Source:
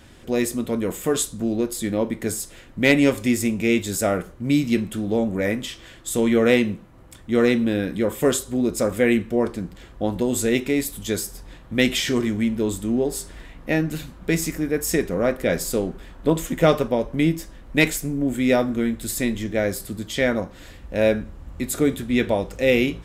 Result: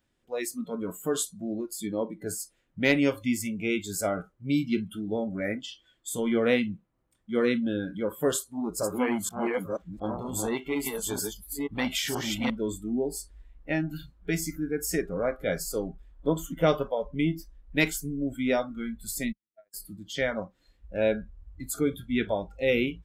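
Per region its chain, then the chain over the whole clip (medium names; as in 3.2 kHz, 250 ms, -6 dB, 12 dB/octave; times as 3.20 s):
8.34–12.50 s: chunks repeated in reverse 476 ms, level -2 dB + treble shelf 8.9 kHz +3.5 dB + transformer saturation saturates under 740 Hz
19.32–19.74 s: gate -17 dBFS, range -50 dB + peaking EQ 1.3 kHz +7 dB 2.3 oct
whole clip: spectral noise reduction 21 dB; peaking EQ 76 Hz -4.5 dB 1 oct; trim -6 dB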